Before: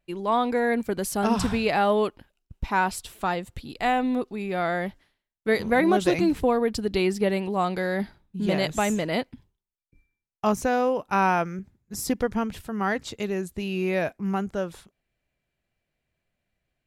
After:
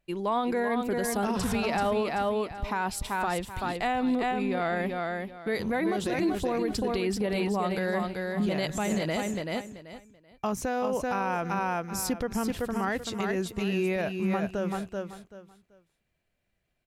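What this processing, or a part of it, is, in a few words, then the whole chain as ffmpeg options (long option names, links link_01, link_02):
stacked limiters: -filter_complex "[0:a]asettb=1/sr,asplit=3[link_01][link_02][link_03];[link_01]atrim=end=3.664[link_04];[link_02]atrim=start=3.66:end=4.77,asetpts=PTS-STARTPTS,afade=type=in:duration=0.004:curve=qsin,afade=type=out:start_time=1.106:duration=0.004:curve=qsin,lowpass=9700[link_05];[link_03]atrim=start=4.766[link_06];[link_04][link_05]acrossfade=duration=0.004:curve1=hsin:curve2=qsin[link_07];[link_07][link_06]acrossfade=duration=0.004:curve1=qsin:curve2=hsin,aecho=1:1:384|768|1152:0.501|0.115|0.0265,alimiter=limit=-13.5dB:level=0:latency=1:release=230,alimiter=limit=-19.5dB:level=0:latency=1:release=43"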